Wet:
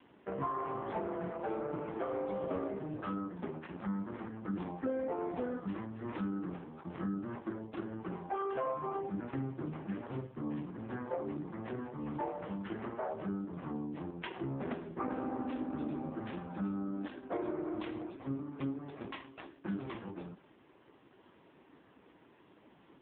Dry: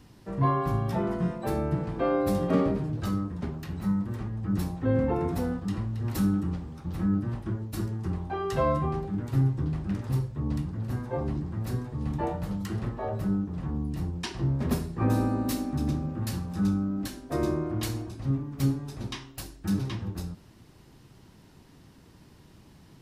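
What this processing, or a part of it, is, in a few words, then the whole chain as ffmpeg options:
voicemail: -af "highpass=340,lowpass=2800,acompressor=threshold=-35dB:ratio=6,volume=3dB" -ar 8000 -c:a libopencore_amrnb -b:a 5150

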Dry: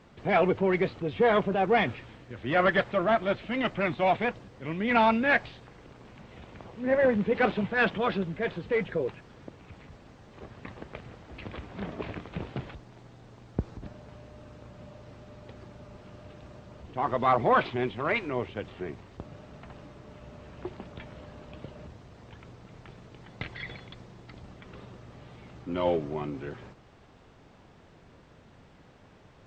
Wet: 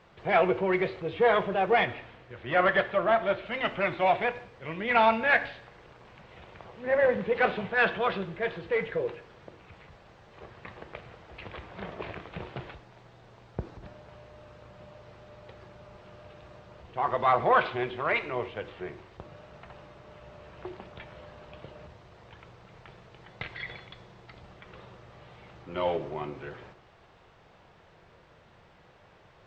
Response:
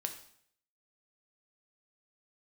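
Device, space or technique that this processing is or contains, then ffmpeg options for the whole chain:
filtered reverb send: -filter_complex "[0:a]asplit=2[link_01][link_02];[link_02]highpass=frequency=260:width=0.5412,highpass=frequency=260:width=1.3066,lowpass=5100[link_03];[1:a]atrim=start_sample=2205[link_04];[link_03][link_04]afir=irnorm=-1:irlink=0,volume=0.5dB[link_05];[link_01][link_05]amix=inputs=2:normalize=0,asettb=1/sr,asplit=3[link_06][link_07][link_08];[link_06]atrim=end=1.854[link_09];[link_07]atrim=start=1.85:end=3.46,asetpts=PTS-STARTPTS,afade=type=in:duration=0.004:curve=qsin,afade=type=out:start_time=1.606:duration=0.004:curve=qsin,highshelf=frequency=4700:gain=-6[link_10];[link_08]atrim=start=3.456[link_11];[link_09][link_10]acrossfade=duration=0.004:curve1=hsin:curve2=qsin[link_12];[link_12][link_11]acrossfade=duration=0.004:curve1=qsin:curve2=hsin,volume=-4.5dB"

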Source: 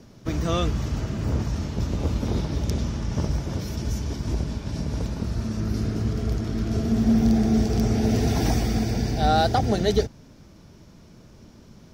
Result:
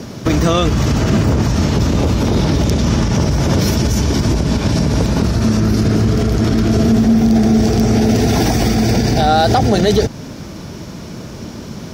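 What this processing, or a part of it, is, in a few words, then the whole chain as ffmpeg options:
loud club master: -af "acompressor=threshold=-26dB:ratio=1.5,asoftclip=type=hard:threshold=-15.5dB,alimiter=level_in=24dB:limit=-1dB:release=50:level=0:latency=1,highpass=frequency=99:poles=1,volume=-3dB"

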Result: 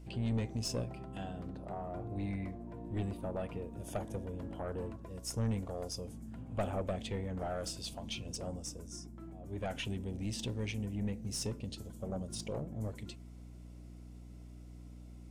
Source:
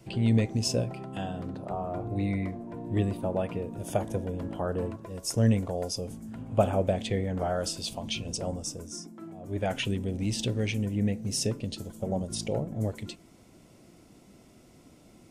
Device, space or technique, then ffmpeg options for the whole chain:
valve amplifier with mains hum: -af "aeval=exprs='(tanh(11.2*val(0)+0.3)-tanh(0.3))/11.2':channel_layout=same,aeval=exprs='val(0)+0.00794*(sin(2*PI*60*n/s)+sin(2*PI*2*60*n/s)/2+sin(2*PI*3*60*n/s)/3+sin(2*PI*4*60*n/s)/4+sin(2*PI*5*60*n/s)/5)':channel_layout=same,volume=-7dB"

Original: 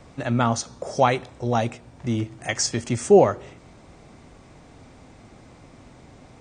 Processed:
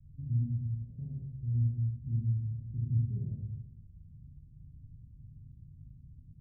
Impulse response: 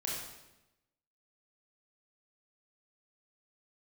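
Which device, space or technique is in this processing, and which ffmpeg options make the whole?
club heard from the street: -filter_complex "[0:a]alimiter=limit=-14dB:level=0:latency=1:release=21,lowpass=frequency=140:width=0.5412,lowpass=frequency=140:width=1.3066[link_01];[1:a]atrim=start_sample=2205[link_02];[link_01][link_02]afir=irnorm=-1:irlink=0,volume=-2.5dB"

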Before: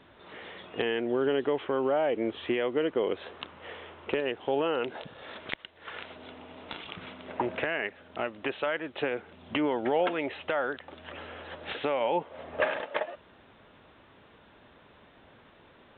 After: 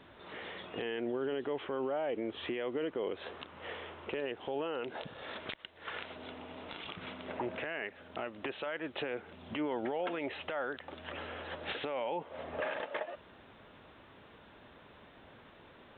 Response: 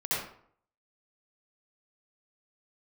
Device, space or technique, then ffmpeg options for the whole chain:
stacked limiters: -af "alimiter=limit=-20.5dB:level=0:latency=1:release=18,alimiter=level_in=3dB:limit=-24dB:level=0:latency=1:release=165,volume=-3dB"

